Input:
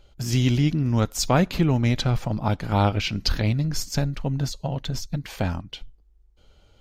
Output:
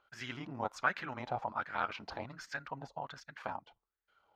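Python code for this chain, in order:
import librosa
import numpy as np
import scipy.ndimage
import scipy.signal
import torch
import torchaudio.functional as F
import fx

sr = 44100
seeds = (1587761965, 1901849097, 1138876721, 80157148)

y = fx.stretch_grains(x, sr, factor=0.64, grain_ms=55.0)
y = fx.wah_lfo(y, sr, hz=1.3, low_hz=780.0, high_hz=1700.0, q=4.1)
y = F.gain(torch.from_numpy(y), 3.5).numpy()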